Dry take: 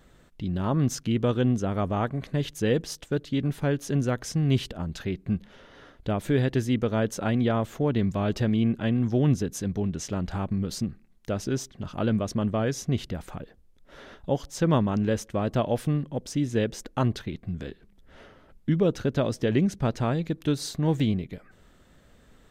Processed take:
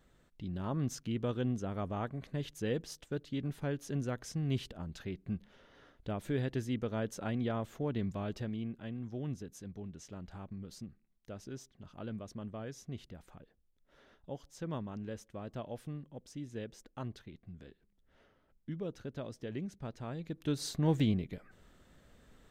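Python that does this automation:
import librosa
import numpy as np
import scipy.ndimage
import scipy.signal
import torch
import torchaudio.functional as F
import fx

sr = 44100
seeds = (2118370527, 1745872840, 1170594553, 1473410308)

y = fx.gain(x, sr, db=fx.line((8.11, -10.5), (8.75, -17.0), (20.02, -17.0), (20.69, -5.0)))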